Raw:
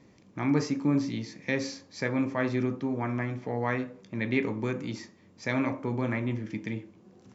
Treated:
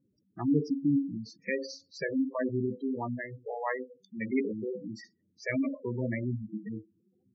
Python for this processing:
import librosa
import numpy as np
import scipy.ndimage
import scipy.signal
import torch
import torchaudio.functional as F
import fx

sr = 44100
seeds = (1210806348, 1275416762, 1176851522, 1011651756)

y = fx.hum_notches(x, sr, base_hz=60, count=8, at=(3.14, 4.74))
y = fx.noise_reduce_blind(y, sr, reduce_db=15)
y = fx.spec_gate(y, sr, threshold_db=-10, keep='strong')